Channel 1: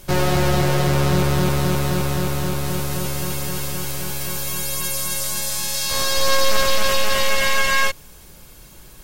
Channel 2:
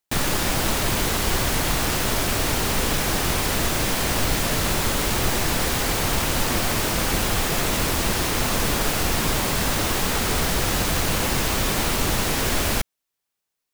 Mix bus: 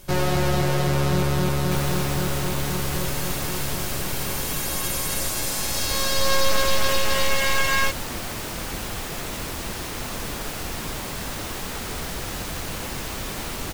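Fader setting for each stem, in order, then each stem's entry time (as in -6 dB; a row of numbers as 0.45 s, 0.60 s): -3.5 dB, -8.5 dB; 0.00 s, 1.60 s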